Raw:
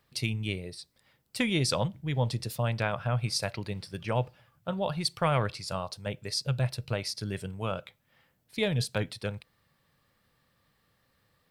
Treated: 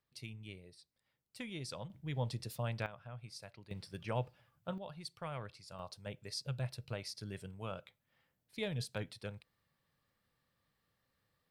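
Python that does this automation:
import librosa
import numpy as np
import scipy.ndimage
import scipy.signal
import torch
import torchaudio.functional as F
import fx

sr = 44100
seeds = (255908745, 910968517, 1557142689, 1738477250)

y = fx.gain(x, sr, db=fx.steps((0.0, -17.0), (1.9, -9.0), (2.86, -20.0), (3.71, -8.0), (4.78, -17.0), (5.79, -10.5)))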